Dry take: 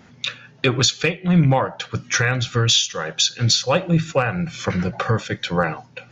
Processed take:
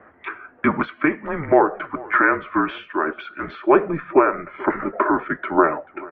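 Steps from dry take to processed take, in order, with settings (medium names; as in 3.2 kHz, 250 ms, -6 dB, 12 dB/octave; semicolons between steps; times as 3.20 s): mistuned SSB -160 Hz 420–2000 Hz; echo from a far wall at 75 m, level -21 dB; trim +6 dB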